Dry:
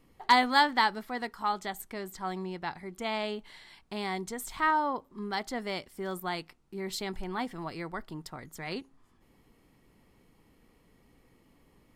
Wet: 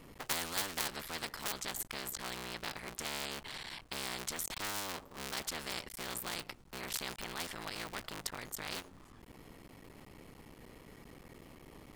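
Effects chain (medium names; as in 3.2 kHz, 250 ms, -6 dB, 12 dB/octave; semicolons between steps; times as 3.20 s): cycle switcher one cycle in 3, muted; spectrum-flattening compressor 4:1; trim +1 dB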